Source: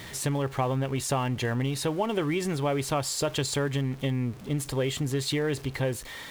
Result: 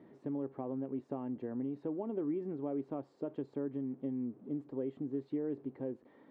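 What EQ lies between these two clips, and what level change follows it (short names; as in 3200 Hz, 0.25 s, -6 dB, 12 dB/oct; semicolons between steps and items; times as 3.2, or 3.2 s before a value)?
ladder band-pass 320 Hz, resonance 45%; +1.5 dB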